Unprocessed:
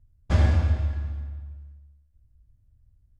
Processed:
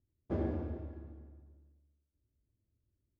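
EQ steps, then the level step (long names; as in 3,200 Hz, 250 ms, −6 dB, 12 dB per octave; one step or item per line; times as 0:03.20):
resonant band-pass 360 Hz, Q 3.1
+3.0 dB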